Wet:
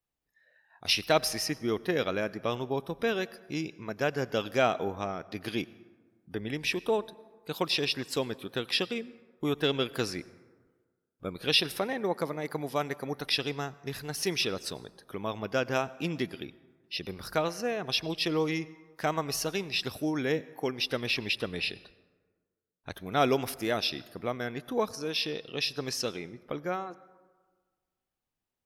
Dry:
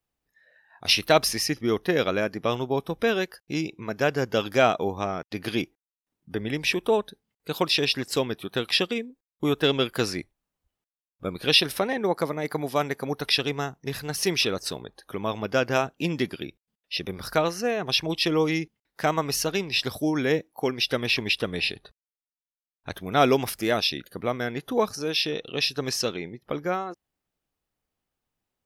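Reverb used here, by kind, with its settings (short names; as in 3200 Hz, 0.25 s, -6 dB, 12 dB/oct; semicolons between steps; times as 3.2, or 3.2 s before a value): plate-style reverb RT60 1.5 s, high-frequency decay 0.45×, pre-delay 80 ms, DRR 19.5 dB; gain -5.5 dB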